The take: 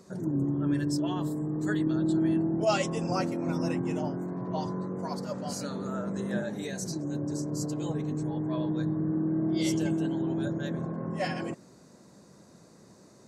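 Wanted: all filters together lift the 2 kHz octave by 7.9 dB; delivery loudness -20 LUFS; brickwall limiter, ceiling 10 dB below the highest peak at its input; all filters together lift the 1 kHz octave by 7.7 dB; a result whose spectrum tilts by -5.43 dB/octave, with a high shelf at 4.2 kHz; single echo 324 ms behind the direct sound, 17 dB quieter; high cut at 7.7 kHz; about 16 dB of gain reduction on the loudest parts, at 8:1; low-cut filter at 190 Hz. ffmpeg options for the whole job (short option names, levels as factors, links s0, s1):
-af "highpass=190,lowpass=7700,equalizer=f=1000:t=o:g=8.5,equalizer=f=2000:t=o:g=6.5,highshelf=f=4200:g=3.5,acompressor=threshold=0.0224:ratio=8,alimiter=level_in=2.82:limit=0.0631:level=0:latency=1,volume=0.355,aecho=1:1:324:0.141,volume=11.2"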